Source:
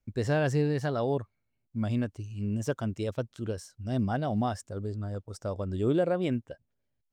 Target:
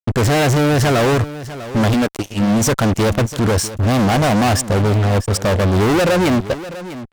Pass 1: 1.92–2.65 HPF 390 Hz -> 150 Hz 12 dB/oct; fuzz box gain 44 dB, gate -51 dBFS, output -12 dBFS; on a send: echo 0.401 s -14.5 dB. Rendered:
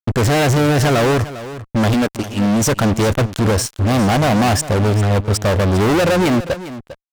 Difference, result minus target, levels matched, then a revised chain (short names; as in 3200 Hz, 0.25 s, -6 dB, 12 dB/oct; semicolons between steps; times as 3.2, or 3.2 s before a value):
echo 0.247 s early
1.92–2.65 HPF 390 Hz -> 150 Hz 12 dB/oct; fuzz box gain 44 dB, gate -51 dBFS, output -12 dBFS; on a send: echo 0.648 s -14.5 dB